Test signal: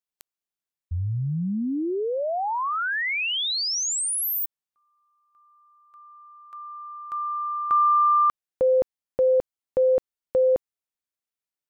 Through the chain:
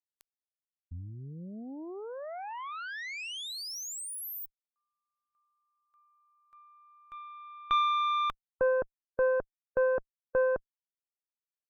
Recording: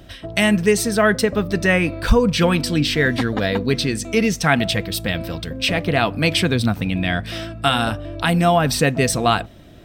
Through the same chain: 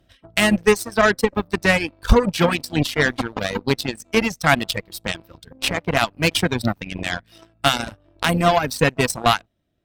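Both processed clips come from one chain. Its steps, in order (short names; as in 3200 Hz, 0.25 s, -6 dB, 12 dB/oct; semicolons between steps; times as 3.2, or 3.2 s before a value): added harmonics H 3 -30 dB, 4 -23 dB, 7 -19 dB, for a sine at -4 dBFS; reverb removal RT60 1.1 s; gain +1.5 dB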